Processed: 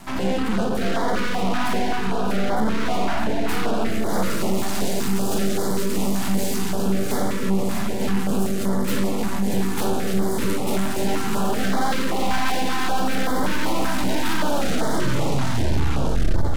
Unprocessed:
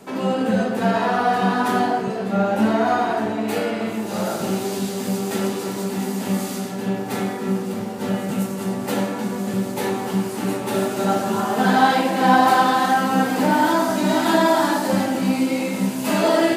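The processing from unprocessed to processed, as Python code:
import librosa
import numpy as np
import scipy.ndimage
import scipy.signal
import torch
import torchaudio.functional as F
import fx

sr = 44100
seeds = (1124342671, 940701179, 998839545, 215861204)

p1 = fx.tape_stop_end(x, sr, length_s=2.28)
p2 = np.maximum(p1, 0.0)
p3 = fx.echo_feedback(p2, sr, ms=637, feedback_pct=49, wet_db=-8.0)
p4 = 10.0 ** (-19.0 / 20.0) * np.tanh(p3 / 10.0 ** (-19.0 / 20.0))
p5 = fx.rider(p4, sr, range_db=10, speed_s=0.5)
p6 = p4 + F.gain(torch.from_numpy(p5), 2.5).numpy()
y = fx.filter_held_notch(p6, sr, hz=5.2, low_hz=460.0, high_hz=2600.0)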